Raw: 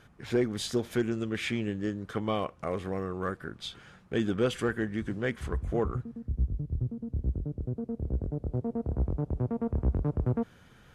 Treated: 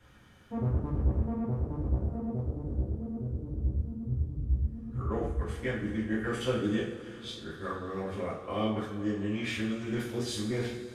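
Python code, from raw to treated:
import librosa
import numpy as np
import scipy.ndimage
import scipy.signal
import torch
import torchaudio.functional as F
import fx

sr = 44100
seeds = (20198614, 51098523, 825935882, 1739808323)

y = np.flip(x).copy()
y = fx.rev_double_slope(y, sr, seeds[0], early_s=0.49, late_s=3.8, knee_db=-18, drr_db=-6.5)
y = y * 10.0 ** (-8.5 / 20.0)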